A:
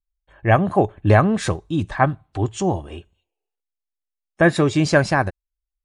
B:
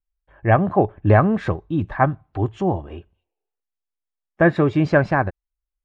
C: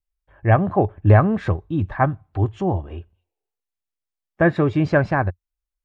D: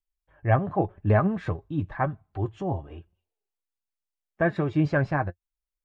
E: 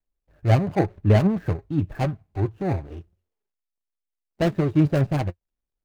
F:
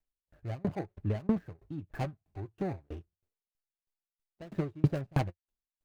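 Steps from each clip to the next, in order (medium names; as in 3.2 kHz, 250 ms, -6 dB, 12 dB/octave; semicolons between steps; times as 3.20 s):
low-pass 2 kHz 12 dB/octave
peaking EQ 89 Hz +7.5 dB 0.67 oct; trim -1.5 dB
flange 0.9 Hz, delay 4.3 ms, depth 3.4 ms, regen +47%; trim -2.5 dB
median filter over 41 samples; trim +5 dB
sawtooth tremolo in dB decaying 3.1 Hz, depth 34 dB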